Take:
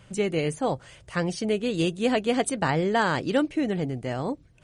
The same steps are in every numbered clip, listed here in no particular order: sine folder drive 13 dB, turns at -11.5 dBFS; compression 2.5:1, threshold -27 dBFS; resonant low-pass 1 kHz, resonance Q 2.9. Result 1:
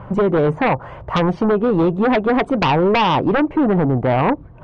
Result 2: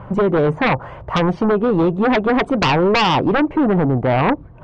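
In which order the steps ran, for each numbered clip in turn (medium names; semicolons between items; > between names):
resonant low-pass > compression > sine folder; compression > resonant low-pass > sine folder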